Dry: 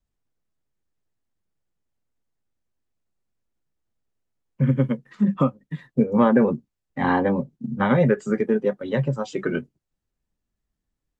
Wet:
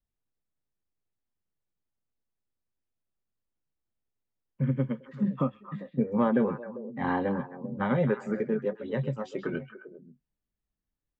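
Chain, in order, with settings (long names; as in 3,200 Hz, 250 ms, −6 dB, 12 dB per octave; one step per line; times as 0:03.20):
high-shelf EQ 5,200 Hz −10.5 dB
echo through a band-pass that steps 132 ms, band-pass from 3,300 Hz, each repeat −1.4 octaves, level −6 dB
level −7.5 dB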